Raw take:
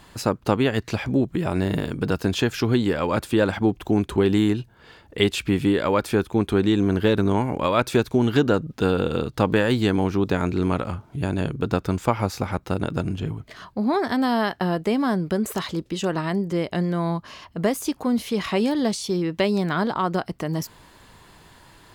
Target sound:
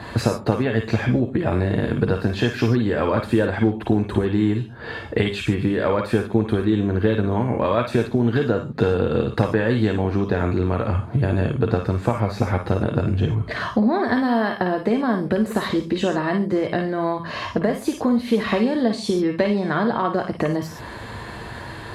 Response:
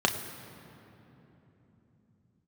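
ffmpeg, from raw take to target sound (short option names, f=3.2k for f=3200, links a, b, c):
-filter_complex "[0:a]acompressor=threshold=-34dB:ratio=8[a];[1:a]atrim=start_sample=2205,atrim=end_sample=3969,asetrate=26019,aresample=44100[b];[a][b]afir=irnorm=-1:irlink=0"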